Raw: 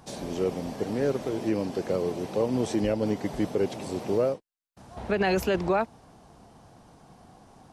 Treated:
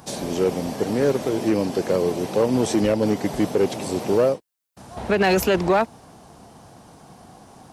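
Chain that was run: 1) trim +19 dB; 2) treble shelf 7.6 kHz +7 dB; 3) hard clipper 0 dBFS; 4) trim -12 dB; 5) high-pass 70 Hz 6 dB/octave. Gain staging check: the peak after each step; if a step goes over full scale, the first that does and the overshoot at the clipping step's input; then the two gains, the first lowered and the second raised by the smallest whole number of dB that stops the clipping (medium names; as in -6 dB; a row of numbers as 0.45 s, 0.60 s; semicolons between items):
+4.0 dBFS, +4.0 dBFS, 0.0 dBFS, -12.0 dBFS, -10.0 dBFS; step 1, 4.0 dB; step 1 +15 dB, step 4 -8 dB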